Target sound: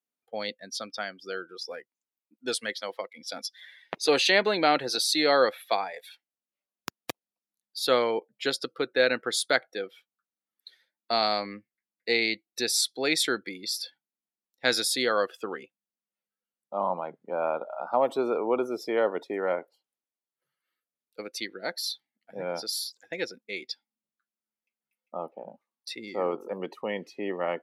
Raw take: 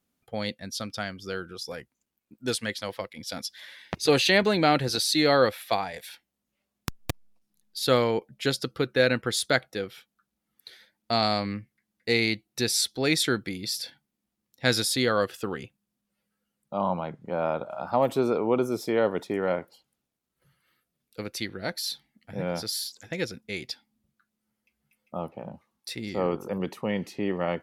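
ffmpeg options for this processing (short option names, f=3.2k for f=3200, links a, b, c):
-af "highpass=350,afftdn=nr=14:nf=-42"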